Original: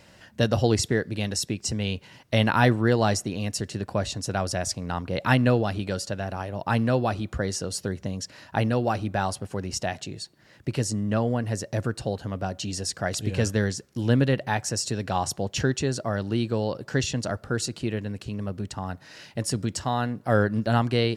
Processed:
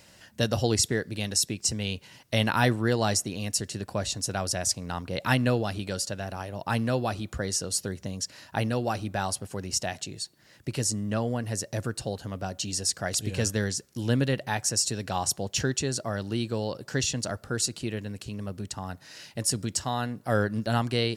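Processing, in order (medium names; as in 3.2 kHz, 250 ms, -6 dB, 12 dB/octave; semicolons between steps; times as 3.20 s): treble shelf 4.5 kHz +11.5 dB; trim -4 dB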